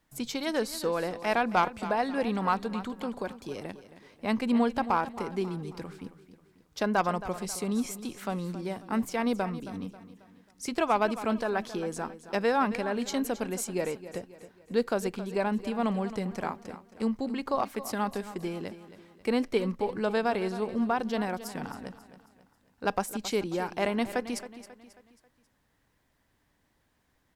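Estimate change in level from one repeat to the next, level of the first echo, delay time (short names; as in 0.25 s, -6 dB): -7.5 dB, -14.0 dB, 0.27 s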